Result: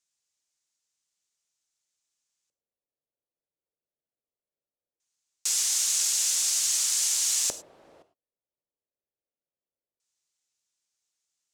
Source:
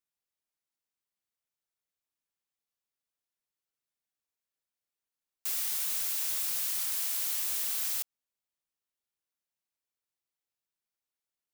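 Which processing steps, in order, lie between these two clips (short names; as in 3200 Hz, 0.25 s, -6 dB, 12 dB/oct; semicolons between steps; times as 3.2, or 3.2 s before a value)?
high shelf 3000 Hz +10.5 dB; LFO low-pass square 0.2 Hz 530–6900 Hz; non-linear reverb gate 0.13 s flat, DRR 11.5 dB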